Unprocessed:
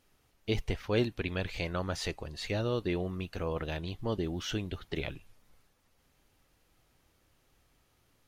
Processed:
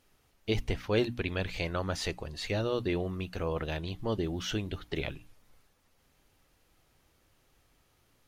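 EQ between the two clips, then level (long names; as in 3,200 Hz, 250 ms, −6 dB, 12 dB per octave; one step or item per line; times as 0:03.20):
mains-hum notches 60/120/180/240/300 Hz
+1.5 dB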